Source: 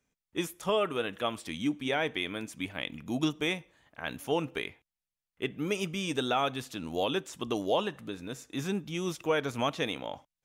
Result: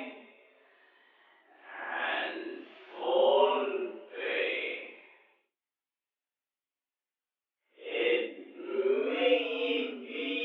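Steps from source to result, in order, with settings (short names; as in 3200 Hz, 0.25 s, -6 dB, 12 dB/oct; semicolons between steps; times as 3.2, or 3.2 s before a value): mistuned SSB +85 Hz 220–3200 Hz; Paulstretch 4.3×, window 0.10 s, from 3.57; gain +3 dB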